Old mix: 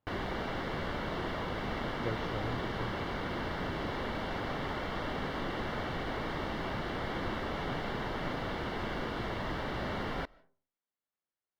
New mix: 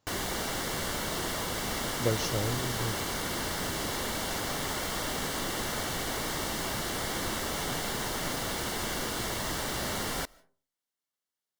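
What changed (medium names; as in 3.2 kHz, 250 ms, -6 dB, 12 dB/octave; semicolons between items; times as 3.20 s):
speech +7.5 dB; master: remove distance through air 360 m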